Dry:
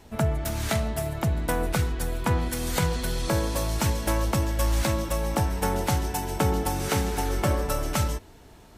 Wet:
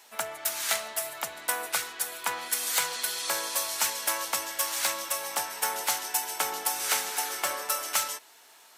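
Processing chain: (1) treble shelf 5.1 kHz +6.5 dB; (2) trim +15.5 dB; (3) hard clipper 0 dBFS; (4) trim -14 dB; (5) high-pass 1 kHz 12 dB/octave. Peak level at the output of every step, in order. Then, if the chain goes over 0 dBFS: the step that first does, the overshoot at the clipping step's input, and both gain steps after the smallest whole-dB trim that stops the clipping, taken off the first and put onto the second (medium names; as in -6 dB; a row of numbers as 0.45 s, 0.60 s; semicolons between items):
-9.5 dBFS, +6.0 dBFS, 0.0 dBFS, -14.0 dBFS, -9.5 dBFS; step 2, 6.0 dB; step 2 +9.5 dB, step 4 -8 dB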